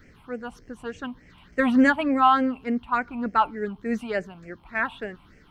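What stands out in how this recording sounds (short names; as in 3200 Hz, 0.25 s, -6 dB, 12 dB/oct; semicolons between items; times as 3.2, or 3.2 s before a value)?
phasing stages 6, 3.4 Hz, lowest notch 460–1000 Hz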